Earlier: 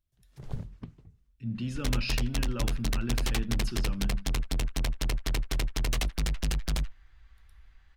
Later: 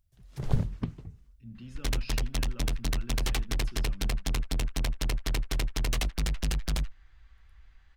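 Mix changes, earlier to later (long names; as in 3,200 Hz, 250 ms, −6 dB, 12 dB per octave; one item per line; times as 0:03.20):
speech −12.0 dB
first sound +10.0 dB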